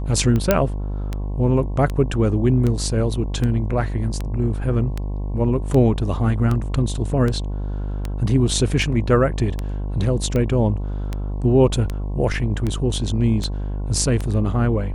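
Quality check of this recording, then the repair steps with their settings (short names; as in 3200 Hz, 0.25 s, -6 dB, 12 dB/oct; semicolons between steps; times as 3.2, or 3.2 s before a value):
buzz 50 Hz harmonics 22 -25 dBFS
tick 78 rpm -12 dBFS
0.51 pop -1 dBFS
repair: de-click; de-hum 50 Hz, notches 22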